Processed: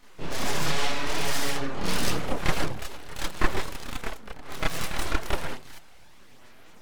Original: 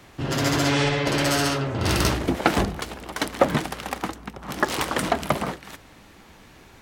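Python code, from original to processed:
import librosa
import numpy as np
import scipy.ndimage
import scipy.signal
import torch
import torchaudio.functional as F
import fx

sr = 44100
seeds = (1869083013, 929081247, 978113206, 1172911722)

y = np.abs(x)
y = fx.chorus_voices(y, sr, voices=4, hz=0.56, base_ms=29, depth_ms=4.1, mix_pct=60)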